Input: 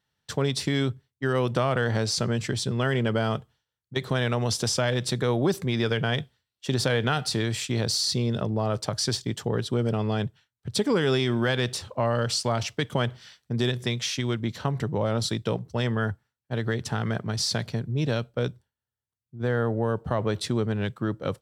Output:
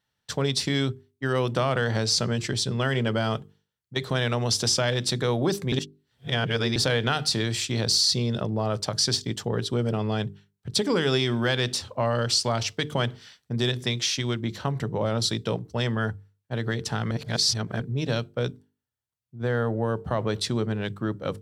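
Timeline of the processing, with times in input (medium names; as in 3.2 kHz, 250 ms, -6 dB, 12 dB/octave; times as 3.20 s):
5.72–6.76 s: reverse
17.11–17.80 s: reverse
whole clip: hum notches 50/100/150/200/250/300/350/400/450 Hz; dynamic bell 4.8 kHz, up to +5 dB, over -42 dBFS, Q 0.97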